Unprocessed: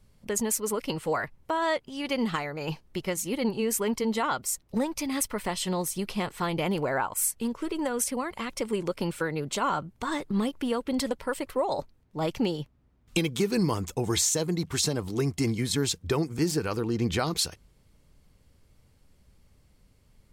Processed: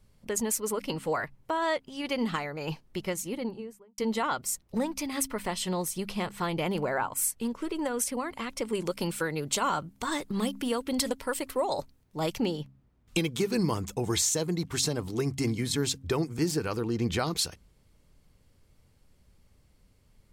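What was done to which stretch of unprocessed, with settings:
3.05–3.98 studio fade out
8.75–12.38 high shelf 4000 Hz +9 dB
whole clip: de-hum 66.99 Hz, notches 4; gain -1.5 dB

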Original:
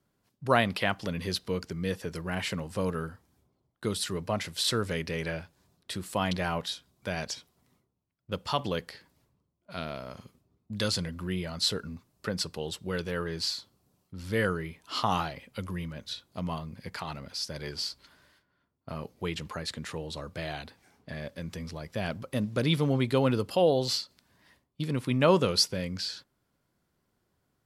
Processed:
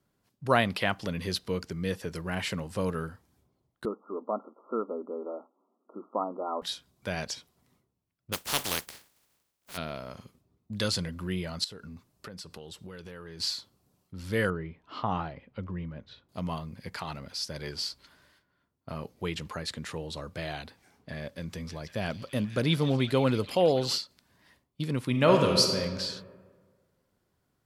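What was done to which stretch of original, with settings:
3.85–6.62 brick-wall FIR band-pass 210–1400 Hz
8.32–9.76 spectral contrast lowered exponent 0.22
11.64–13.4 compressor, threshold -40 dBFS
14.5–16.29 tape spacing loss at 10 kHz 36 dB
21.2–23.98 delay with a stepping band-pass 0.168 s, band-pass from 5500 Hz, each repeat -0.7 oct, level -5 dB
25.1–25.8 reverb throw, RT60 1.6 s, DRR 3 dB

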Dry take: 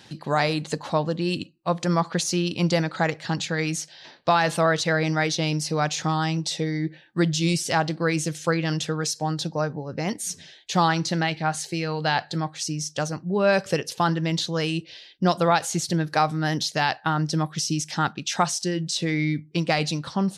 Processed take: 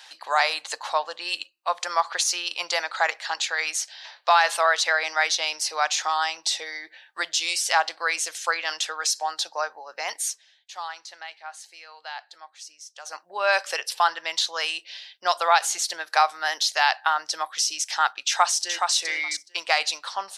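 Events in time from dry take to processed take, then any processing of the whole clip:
10.25–13.16 dip -15.5 dB, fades 0.13 s
13.85–14.36 notch 6500 Hz, Q 6.6
18.27–18.94 echo throw 0.42 s, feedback 10%, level -5 dB
whole clip: HPF 750 Hz 24 dB/oct; gain +4 dB

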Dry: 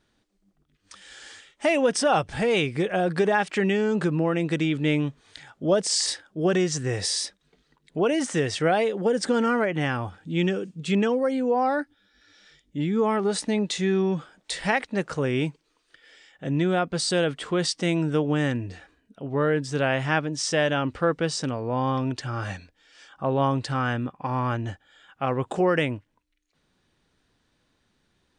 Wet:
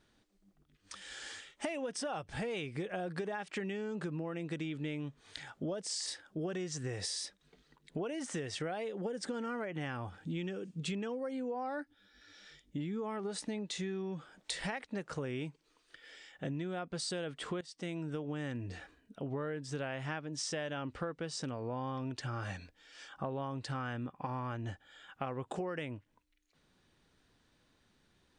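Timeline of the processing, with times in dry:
17.61–18.61 fade in, from -18.5 dB
whole clip: compressor 10:1, threshold -34 dBFS; gain -1.5 dB

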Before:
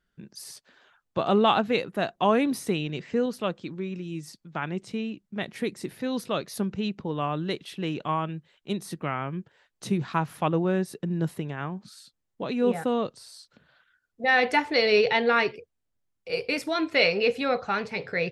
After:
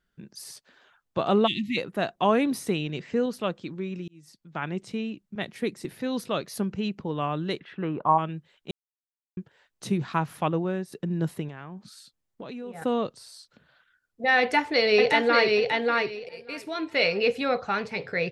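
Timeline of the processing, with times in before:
1.47–1.77 spectral delete 370–1800 Hz
4.08–4.65 fade in
5.35–5.85 three-band expander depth 70%
6.49–7.02 notch 3700 Hz, Q 13
7.59–8.17 synth low-pass 1900 Hz -> 840 Hz, resonance Q 4.4
8.71–9.37 mute
10.4–10.92 fade out, to -8 dB
11.48–12.82 compressor, threshold -35 dBFS
14.39–15.56 echo throw 0.59 s, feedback 20%, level -2.5 dB
16.29–17.25 fade in, from -16.5 dB

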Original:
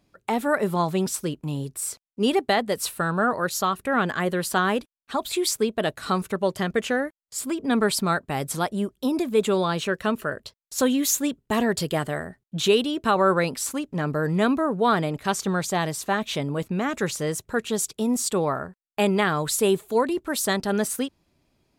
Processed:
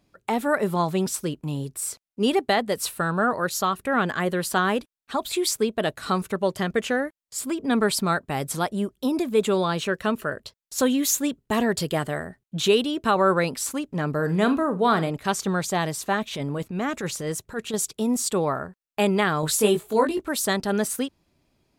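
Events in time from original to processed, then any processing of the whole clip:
14.15–15.1 flutter echo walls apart 7.4 m, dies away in 0.22 s
16.25–17.74 transient shaper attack -10 dB, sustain -1 dB
19.41–20.29 doubler 19 ms -3 dB

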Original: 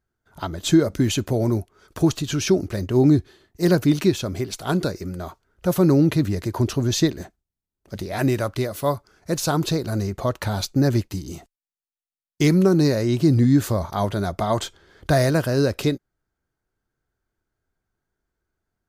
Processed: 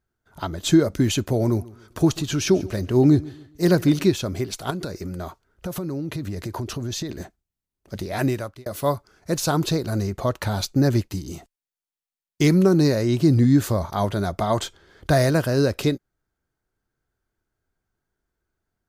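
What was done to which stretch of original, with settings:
1.45–4.06 feedback echo 0.14 s, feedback 34%, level -20.5 dB
4.7–7.1 compressor 12:1, threshold -25 dBFS
8.18–8.66 fade out

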